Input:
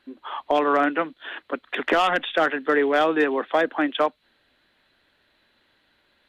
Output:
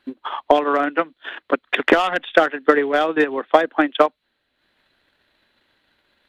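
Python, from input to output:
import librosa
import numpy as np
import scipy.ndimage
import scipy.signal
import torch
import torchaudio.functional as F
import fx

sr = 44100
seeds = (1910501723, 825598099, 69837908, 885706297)

y = fx.transient(x, sr, attack_db=10, sustain_db=-7)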